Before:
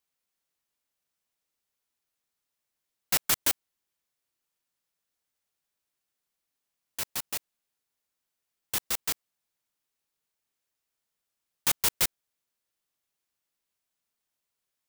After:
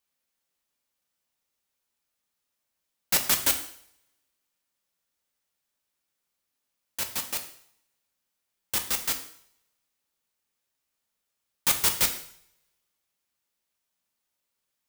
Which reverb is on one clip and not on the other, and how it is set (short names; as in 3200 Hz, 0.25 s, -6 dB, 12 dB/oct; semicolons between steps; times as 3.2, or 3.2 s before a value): two-slope reverb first 0.6 s, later 1.6 s, from -28 dB, DRR 4.5 dB; gain +1.5 dB